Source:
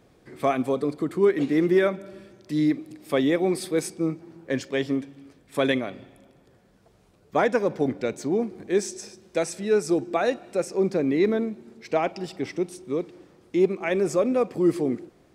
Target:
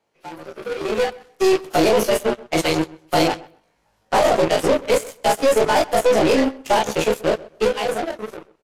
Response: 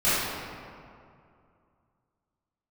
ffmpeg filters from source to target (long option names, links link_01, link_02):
-filter_complex "[0:a]afftfilt=real='re':imag='-im':win_size=2048:overlap=0.75,asplit=2[link_01][link_02];[link_02]adelay=48,volume=-3dB[link_03];[link_01][link_03]amix=inputs=2:normalize=0,asetrate=56007,aresample=44100,acrossover=split=130|780|4500[link_04][link_05][link_06][link_07];[link_04]acompressor=threshold=-48dB:ratio=4[link_08];[link_05]acompressor=threshold=-25dB:ratio=4[link_09];[link_06]acompressor=threshold=-45dB:ratio=4[link_10];[link_07]acompressor=threshold=-45dB:ratio=4[link_11];[link_08][link_09][link_10][link_11]amix=inputs=4:normalize=0,asubboost=boost=2:cutoff=170,asplit=2[link_12][link_13];[link_13]highpass=frequency=720:poles=1,volume=19dB,asoftclip=type=tanh:threshold=-18dB[link_14];[link_12][link_14]amix=inputs=2:normalize=0,lowpass=frequency=7300:poles=1,volume=-6dB,dynaudnorm=framelen=320:gausssize=9:maxgain=9dB,aeval=exprs='0.355*(cos(1*acos(clip(val(0)/0.355,-1,1)))-cos(1*PI/2))+0.0708*(cos(2*acos(clip(val(0)/0.355,-1,1)))-cos(2*PI/2))+0.0158*(cos(6*acos(clip(val(0)/0.355,-1,1)))-cos(6*PI/2))+0.0562*(cos(7*acos(clip(val(0)/0.355,-1,1)))-cos(7*PI/2))+0.0178*(cos(8*acos(clip(val(0)/0.355,-1,1)))-cos(8*PI/2))':channel_layout=same,atempo=1.4,asplit=2[link_15][link_16];[link_16]adelay=129,lowpass=frequency=2500:poles=1,volume=-20dB,asplit=2[link_17][link_18];[link_18]adelay=129,lowpass=frequency=2500:poles=1,volume=0.21[link_19];[link_17][link_19]amix=inputs=2:normalize=0[link_20];[link_15][link_20]amix=inputs=2:normalize=0" -ar 32000 -c:a aac -b:a 64k